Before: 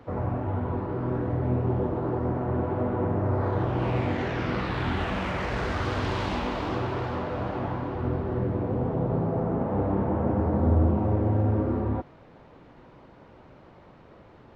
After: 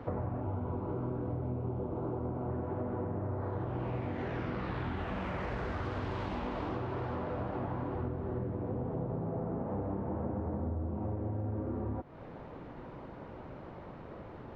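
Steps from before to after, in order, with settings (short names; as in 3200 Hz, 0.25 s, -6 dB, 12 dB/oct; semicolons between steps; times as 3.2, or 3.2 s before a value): 0.41–2.5 bell 1800 Hz -13.5 dB 0.23 oct; compressor 16:1, threshold -37 dBFS, peak gain reduction 20.5 dB; high shelf 2900 Hz -11 dB; gain +5 dB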